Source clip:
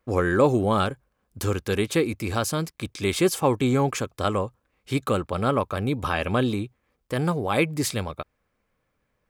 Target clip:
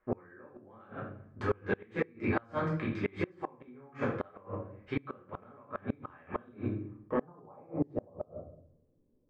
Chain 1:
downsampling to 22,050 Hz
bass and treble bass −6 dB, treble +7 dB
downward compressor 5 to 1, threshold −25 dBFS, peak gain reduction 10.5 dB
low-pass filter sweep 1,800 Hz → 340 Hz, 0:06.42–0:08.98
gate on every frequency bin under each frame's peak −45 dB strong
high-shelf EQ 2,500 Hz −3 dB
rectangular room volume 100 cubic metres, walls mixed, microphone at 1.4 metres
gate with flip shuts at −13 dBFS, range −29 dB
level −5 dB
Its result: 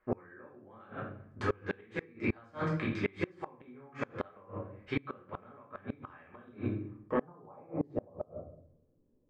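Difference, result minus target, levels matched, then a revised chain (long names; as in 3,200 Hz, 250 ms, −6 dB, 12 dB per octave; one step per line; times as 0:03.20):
4,000 Hz band +4.5 dB
downsampling to 22,050 Hz
bass and treble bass −6 dB, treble +7 dB
downward compressor 5 to 1, threshold −25 dBFS, peak gain reduction 10.5 dB
low-pass filter sweep 1,800 Hz → 340 Hz, 0:06.42–0:08.98
gate on every frequency bin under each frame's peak −45 dB strong
high-shelf EQ 2,500 Hz −10 dB
rectangular room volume 100 cubic metres, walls mixed, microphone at 1.4 metres
gate with flip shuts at −13 dBFS, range −29 dB
level −5 dB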